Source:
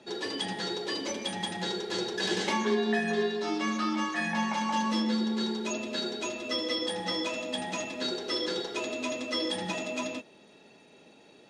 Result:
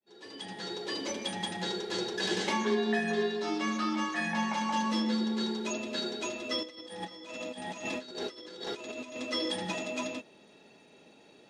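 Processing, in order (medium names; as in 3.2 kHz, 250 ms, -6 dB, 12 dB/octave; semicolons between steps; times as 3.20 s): fade-in on the opening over 1.03 s; 6.63–9.16 s: compressor with a negative ratio -38 dBFS, ratio -0.5; trim -1.5 dB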